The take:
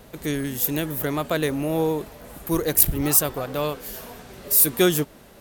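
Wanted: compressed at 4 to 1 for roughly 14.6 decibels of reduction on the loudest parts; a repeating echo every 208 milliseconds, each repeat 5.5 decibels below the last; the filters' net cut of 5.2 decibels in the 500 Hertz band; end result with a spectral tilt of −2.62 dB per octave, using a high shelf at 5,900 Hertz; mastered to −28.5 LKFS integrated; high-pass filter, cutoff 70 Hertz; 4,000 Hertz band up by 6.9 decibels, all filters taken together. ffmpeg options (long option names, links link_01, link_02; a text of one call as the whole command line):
ffmpeg -i in.wav -af "highpass=70,equalizer=frequency=500:width_type=o:gain=-7,equalizer=frequency=4000:width_type=o:gain=7,highshelf=frequency=5900:gain=4.5,acompressor=threshold=-25dB:ratio=4,aecho=1:1:208|416|624|832|1040|1248|1456:0.531|0.281|0.149|0.079|0.0419|0.0222|0.0118,volume=-1.5dB" out.wav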